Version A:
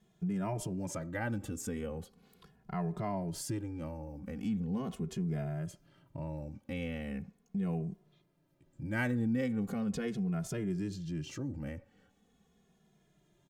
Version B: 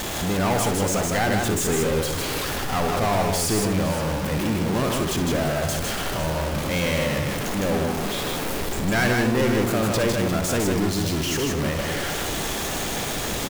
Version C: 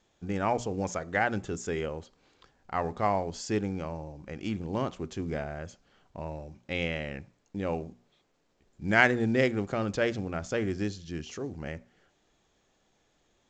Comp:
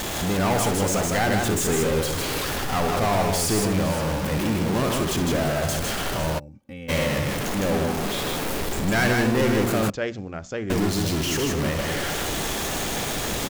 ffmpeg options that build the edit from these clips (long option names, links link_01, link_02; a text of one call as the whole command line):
ffmpeg -i take0.wav -i take1.wav -i take2.wav -filter_complex "[1:a]asplit=3[link_01][link_02][link_03];[link_01]atrim=end=6.4[link_04];[0:a]atrim=start=6.38:end=6.9[link_05];[link_02]atrim=start=6.88:end=9.902[link_06];[2:a]atrim=start=9.898:end=10.702[link_07];[link_03]atrim=start=10.698[link_08];[link_04][link_05]acrossfade=duration=0.02:curve1=tri:curve2=tri[link_09];[link_09][link_06]acrossfade=duration=0.02:curve1=tri:curve2=tri[link_10];[link_10][link_07]acrossfade=duration=0.004:curve1=hsin:curve2=hsin[link_11];[link_11][link_08]acrossfade=duration=0.004:curve1=hsin:curve2=hsin" out.wav